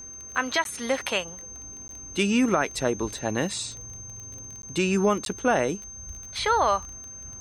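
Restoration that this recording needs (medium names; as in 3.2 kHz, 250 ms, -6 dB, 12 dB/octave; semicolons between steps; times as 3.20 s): de-click; band-stop 6.3 kHz, Q 30; interpolate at 0.64/1.88/4.62/5.25 s, 12 ms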